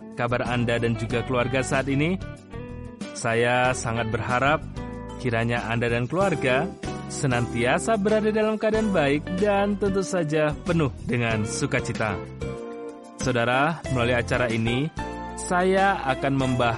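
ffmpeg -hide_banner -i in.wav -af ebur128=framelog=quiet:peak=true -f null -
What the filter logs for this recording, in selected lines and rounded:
Integrated loudness:
  I:         -24.0 LUFS
  Threshold: -34.4 LUFS
Loudness range:
  LRA:         2.8 LU
  Threshold: -44.5 LUFS
  LRA low:   -25.8 LUFS
  LRA high:  -23.0 LUFS
True peak:
  Peak:       -8.3 dBFS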